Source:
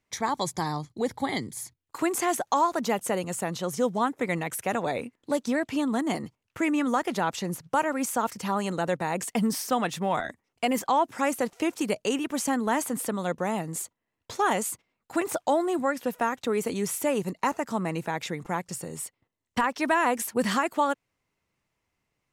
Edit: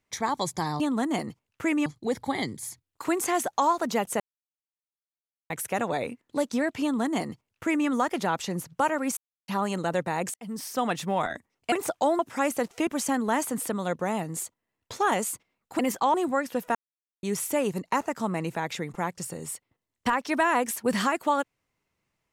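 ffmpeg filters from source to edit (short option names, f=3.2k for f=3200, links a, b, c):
-filter_complex "[0:a]asplit=15[a][b][c][d][e][f][g][h][i][j][k][l][m][n][o];[a]atrim=end=0.802[p];[b]atrim=start=5.758:end=6.822[q];[c]atrim=start=0.798:end=3.14,asetpts=PTS-STARTPTS,afade=t=out:st=2.338:d=0.004:c=hsin[r];[d]atrim=start=3.14:end=4.44,asetpts=PTS-STARTPTS,volume=0[s];[e]atrim=start=4.44:end=8.11,asetpts=PTS-STARTPTS,afade=t=in:d=0.004:c=hsin,afade=t=out:st=3.666:d=0.004:c=hsin[t];[f]atrim=start=8.11:end=8.42,asetpts=PTS-STARTPTS,volume=0[u];[g]atrim=start=8.42:end=9.28,asetpts=PTS-STARTPTS,afade=t=in:d=0.004:c=hsin,afade=t=out:st=0.856:d=0.004:c=hsin[v];[h]atrim=start=9.28:end=10.662,asetpts=PTS-STARTPTS,afade=t=in:d=0.56[w];[i]atrim=start=15.178:end=15.652[x];[j]atrim=start=11.008:end=11.692[y];[k]atrim=start=12.258:end=15.182[z];[l]atrim=start=10.658:end=11.012[aa];[m]atrim=start=15.648:end=16.26,asetpts=PTS-STARTPTS,afade=t=out:st=0.608:d=0.004:c=hsin[ab];[n]atrim=start=16.26:end=16.74,asetpts=PTS-STARTPTS,volume=0[ac];[o]atrim=start=16.74,asetpts=PTS-STARTPTS,afade=t=in:d=0.004:c=hsin[ad];[p][q]acrossfade=d=0.004:c1=hsin:c2=hsin[ae];[r][s][t][u][v][w]concat=n=6:v=0:a=1[af];[ae][af]acrossfade=d=0.004:c1=hsin:c2=hsin[ag];[ag][x]acrossfade=d=0.004:c1=hsin:c2=hsin[ah];[ah][y]acrossfade=d=0.004:c1=hsin:c2=hsin[ai];[ai][z]acrossfade=d=0.004:c1=hsin:c2=hsin[aj];[aj][aa]acrossfade=d=0.004:c1=hsin:c2=hsin[ak];[ab][ac][ad]concat=n=3:v=0:a=1[al];[ak][al]acrossfade=d=0.004:c1=hsin:c2=hsin"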